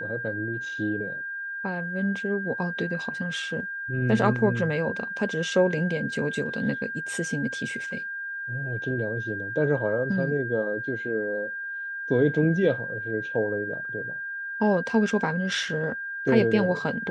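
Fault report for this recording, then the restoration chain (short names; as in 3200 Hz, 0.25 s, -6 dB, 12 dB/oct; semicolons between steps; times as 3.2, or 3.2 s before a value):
tone 1600 Hz -31 dBFS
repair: notch 1600 Hz, Q 30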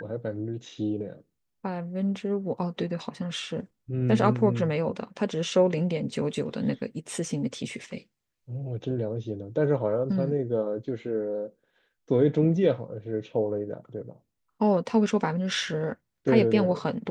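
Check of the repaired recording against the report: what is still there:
none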